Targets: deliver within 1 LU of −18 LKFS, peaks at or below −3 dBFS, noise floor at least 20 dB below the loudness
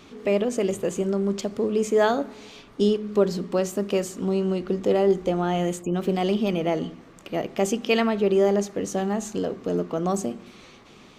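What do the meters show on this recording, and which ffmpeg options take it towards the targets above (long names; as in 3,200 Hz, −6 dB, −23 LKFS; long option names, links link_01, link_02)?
integrated loudness −24.5 LKFS; sample peak −8.5 dBFS; target loudness −18.0 LKFS
→ -af "volume=6.5dB,alimiter=limit=-3dB:level=0:latency=1"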